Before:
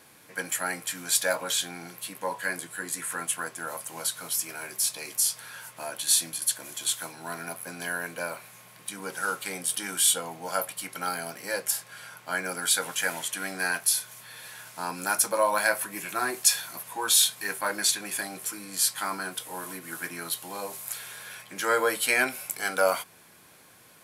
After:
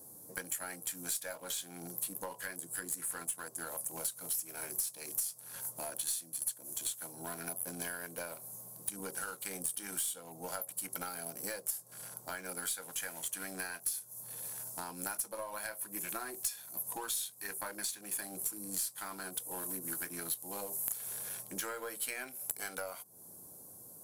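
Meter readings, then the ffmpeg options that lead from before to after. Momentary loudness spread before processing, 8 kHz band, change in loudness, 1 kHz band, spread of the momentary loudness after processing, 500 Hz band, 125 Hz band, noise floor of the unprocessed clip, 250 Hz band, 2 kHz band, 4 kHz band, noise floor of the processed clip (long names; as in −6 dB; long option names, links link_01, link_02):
14 LU, −9.5 dB, −10.5 dB, −14.0 dB, 7 LU, −14.0 dB, −6.5 dB, −55 dBFS, −8.0 dB, −14.5 dB, −15.5 dB, −54 dBFS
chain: -filter_complex "[0:a]acrossover=split=840|6200[link_01][link_02][link_03];[link_02]aeval=exprs='sgn(val(0))*max(abs(val(0))-0.0075,0)':channel_layout=same[link_04];[link_01][link_04][link_03]amix=inputs=3:normalize=0,acompressor=threshold=-39dB:ratio=10,aeval=exprs='0.1*(cos(1*acos(clip(val(0)/0.1,-1,1)))-cos(1*PI/2))+0.0316*(cos(2*acos(clip(val(0)/0.1,-1,1)))-cos(2*PI/2))':channel_layout=same,highshelf=frequency=10000:gain=11.5"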